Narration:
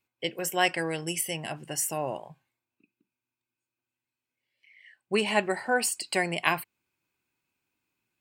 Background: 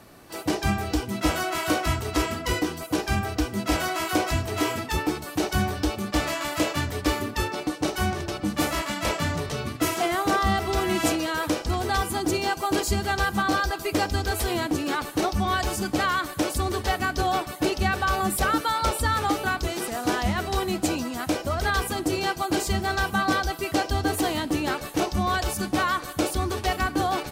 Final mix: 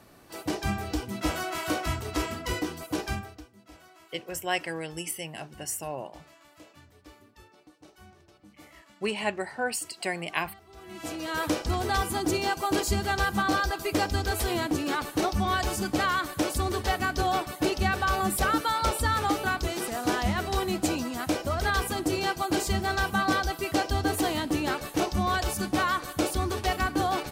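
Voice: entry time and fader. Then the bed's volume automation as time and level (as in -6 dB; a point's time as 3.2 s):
3.90 s, -4.0 dB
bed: 3.09 s -5 dB
3.53 s -27.5 dB
10.68 s -27.5 dB
11.38 s -2 dB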